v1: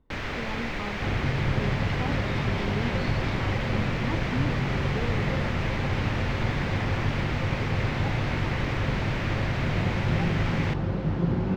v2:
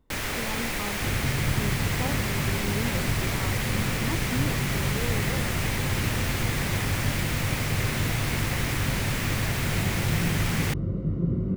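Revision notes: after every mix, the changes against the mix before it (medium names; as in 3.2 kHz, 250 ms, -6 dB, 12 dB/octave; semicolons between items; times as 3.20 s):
second sound: add boxcar filter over 53 samples; master: remove distance through air 210 m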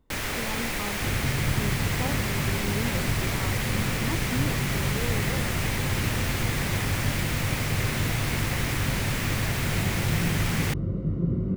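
no change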